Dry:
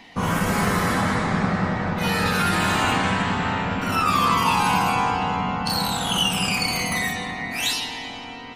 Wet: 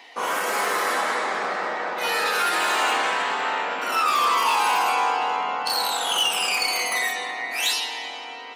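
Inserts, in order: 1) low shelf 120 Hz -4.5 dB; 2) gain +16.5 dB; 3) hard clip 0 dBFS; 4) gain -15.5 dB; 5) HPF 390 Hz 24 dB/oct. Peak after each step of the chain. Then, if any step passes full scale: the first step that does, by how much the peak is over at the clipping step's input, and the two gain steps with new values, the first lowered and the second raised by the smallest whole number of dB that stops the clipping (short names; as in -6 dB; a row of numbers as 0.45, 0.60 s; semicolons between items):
-7.5, +9.0, 0.0, -15.5, -10.0 dBFS; step 2, 9.0 dB; step 2 +7.5 dB, step 4 -6.5 dB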